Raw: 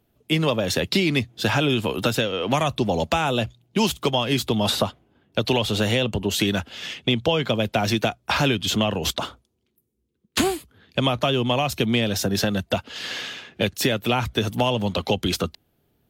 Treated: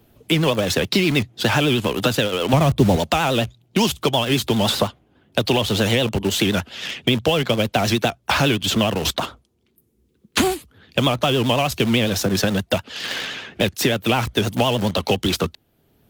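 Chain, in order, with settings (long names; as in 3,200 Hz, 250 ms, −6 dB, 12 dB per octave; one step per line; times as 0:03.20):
0:02.53–0:02.96: spectral tilt −3.5 dB per octave
in parallel at −9 dB: bit reduction 4 bits
on the sum: pitch vibrato 9.7 Hz 99 cents
multiband upward and downward compressor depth 40%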